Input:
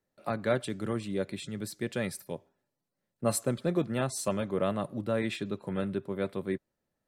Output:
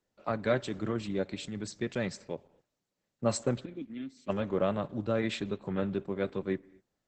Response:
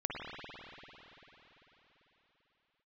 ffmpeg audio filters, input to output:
-filter_complex "[0:a]asplit=3[s0][s1][s2];[s0]afade=t=out:st=3.64:d=0.02[s3];[s1]asplit=3[s4][s5][s6];[s4]bandpass=f=270:t=q:w=8,volume=1[s7];[s5]bandpass=f=2290:t=q:w=8,volume=0.501[s8];[s6]bandpass=f=3010:t=q:w=8,volume=0.355[s9];[s7][s8][s9]amix=inputs=3:normalize=0,afade=t=in:st=3.64:d=0.02,afade=t=out:st=4.28:d=0.02[s10];[s2]afade=t=in:st=4.28:d=0.02[s11];[s3][s10][s11]amix=inputs=3:normalize=0,asplit=2[s12][s13];[1:a]atrim=start_sample=2205,afade=t=out:st=0.31:d=0.01,atrim=end_sample=14112[s14];[s13][s14]afir=irnorm=-1:irlink=0,volume=0.0631[s15];[s12][s15]amix=inputs=2:normalize=0" -ar 48000 -c:a libopus -b:a 10k

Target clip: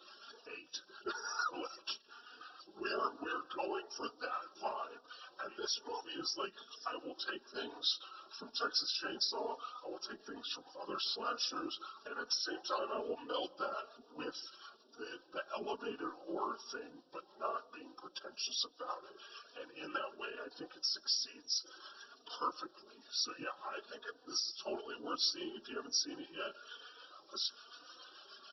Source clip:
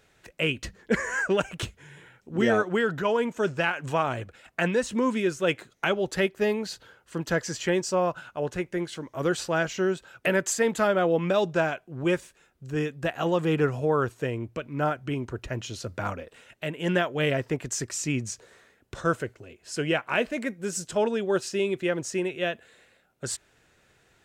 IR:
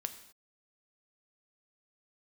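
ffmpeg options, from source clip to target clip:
-filter_complex "[0:a]aeval=exprs='val(0)+0.5*0.0141*sgn(val(0))':c=same,afftdn=nr=14:nf=-45,aderivative,afftfilt=real='re*between(b*sr/4096,310,6700)':imag='im*between(b*sr/4096,310,6700)':win_size=4096:overlap=0.75,alimiter=level_in=1.88:limit=0.0631:level=0:latency=1:release=273,volume=0.531,afftfilt=real='hypot(re,im)*cos(2*PI*random(0))':imag='hypot(re,im)*sin(2*PI*random(1))':win_size=512:overlap=0.75,asetrate=37485,aresample=44100,acrossover=split=550[s0][s1];[s0]aeval=exprs='val(0)*(1-0.5/2+0.5/2*cos(2*PI*6.8*n/s))':c=same[s2];[s1]aeval=exprs='val(0)*(1-0.5/2-0.5/2*cos(2*PI*6.8*n/s))':c=same[s3];[s2][s3]amix=inputs=2:normalize=0,asuperstop=centerf=2100:order=4:qfactor=1.4,asplit=2[s4][s5];[s5]adelay=168,lowpass=f=1200:p=1,volume=0.0668,asplit=2[s6][s7];[s7]adelay=168,lowpass=f=1200:p=1,volume=0.39,asplit=2[s8][s9];[s9]adelay=168,lowpass=f=1200:p=1,volume=0.39[s10];[s6][s8][s10]amix=inputs=3:normalize=0[s11];[s4][s11]amix=inputs=2:normalize=0,asplit=2[s12][s13];[s13]adelay=3.4,afreqshift=1.1[s14];[s12][s14]amix=inputs=2:normalize=1,volume=6.68"

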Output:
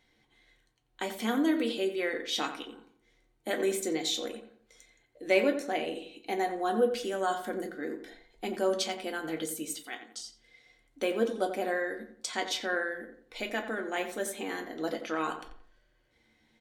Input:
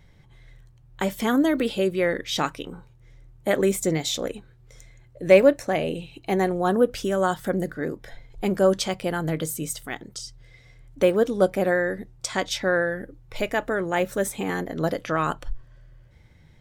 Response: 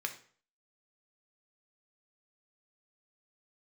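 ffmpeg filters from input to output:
-filter_complex "[0:a]asettb=1/sr,asplit=3[s0][s1][s2];[s0]atrim=end=9.754[s3];[s1]atrim=start=9.75:end=10.2,asetpts=PTS-STARTPTS,afade=t=in:d=0.004:c=qsin,afade=t=out:st=0.446:d=0.004:c=qsin,lowshelf=f=260:g=-12[s4];[s2]atrim=start=10.196[s5];[s3][s4]acrossfade=d=0.004:c1=hsin:c2=qsin[s6];[s6][s5]acrossfade=d=0.004:c1=qsin:c2=hsin,asplit=2[s7][s8];[s8]adelay=88,lowpass=f=2200:p=1,volume=0.355,asplit=2[s9][s10];[s10]adelay=88,lowpass=f=2200:p=1,volume=0.38,asplit=2[s11][s12];[s12]adelay=88,lowpass=f=2200:p=1,volume=0.38,asplit=2[s13][s14];[s14]adelay=88,lowpass=f=2200:p=1,volume=0.38[s15];[s7][s9][s11][s13][s15]amix=inputs=5:normalize=0[s16];[1:a]atrim=start_sample=2205,afade=t=out:st=0.14:d=0.01,atrim=end_sample=6615,asetrate=79380,aresample=44100[s17];[s16][s17]afir=irnorm=-1:irlink=0,volume=0.841"

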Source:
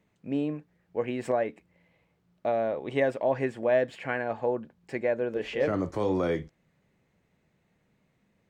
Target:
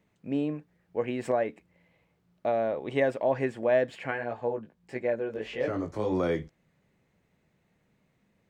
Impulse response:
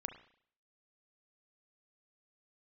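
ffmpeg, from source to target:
-filter_complex "[0:a]asplit=3[s0][s1][s2];[s0]afade=t=out:st=4.1:d=0.02[s3];[s1]flanger=delay=16:depth=3.3:speed=1.6,afade=t=in:st=4.1:d=0.02,afade=t=out:st=6.11:d=0.02[s4];[s2]afade=t=in:st=6.11:d=0.02[s5];[s3][s4][s5]amix=inputs=3:normalize=0"

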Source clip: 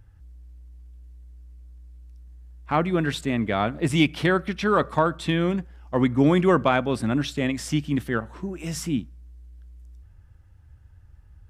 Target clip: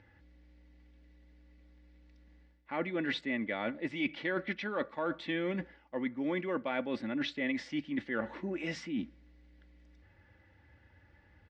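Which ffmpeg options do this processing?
-af "aecho=1:1:3.5:0.49,areverse,acompressor=threshold=0.02:ratio=10,areverse,highpass=190,equalizer=f=470:t=q:w=4:g=4,equalizer=f=1200:t=q:w=4:g=-5,equalizer=f=2000:t=q:w=4:g=10,lowpass=f=4500:w=0.5412,lowpass=f=4500:w=1.3066,volume=1.33"

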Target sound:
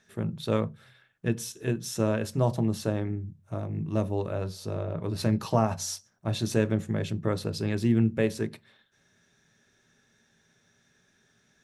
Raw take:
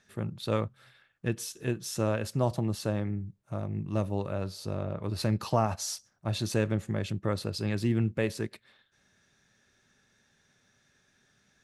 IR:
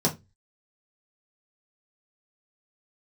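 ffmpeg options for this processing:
-filter_complex "[0:a]asplit=2[s0][s1];[1:a]atrim=start_sample=2205,asetrate=43218,aresample=44100[s2];[s1][s2]afir=irnorm=-1:irlink=0,volume=0.0794[s3];[s0][s3]amix=inputs=2:normalize=0"

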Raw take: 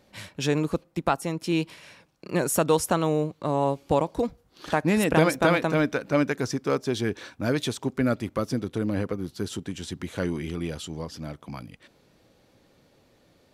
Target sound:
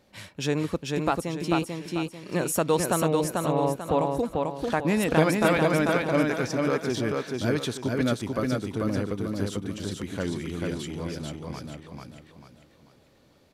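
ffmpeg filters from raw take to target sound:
-filter_complex "[0:a]asettb=1/sr,asplit=3[s0][s1][s2];[s0]atrim=end=3.084[s3];[s1]atrim=start=3.08:end=3.99,asetpts=PTS-STARTPTS,afade=t=in:d=0.004:c=qsin,afade=t=out:st=0.906:d=0.004:c=qsin,lowpass=f=4000:w=0.5412,lowpass=f=4000:w=1.3066[s4];[s2]atrim=start=3.986[s5];[s3][s4]acrossfade=d=0.004:c1=hsin:c2=qsin[s6];[s6][s5]acrossfade=d=0.004:c1=qsin:c2=hsin,aecho=1:1:442|884|1326|1768|2210:0.708|0.262|0.0969|0.0359|0.0133,volume=0.794"

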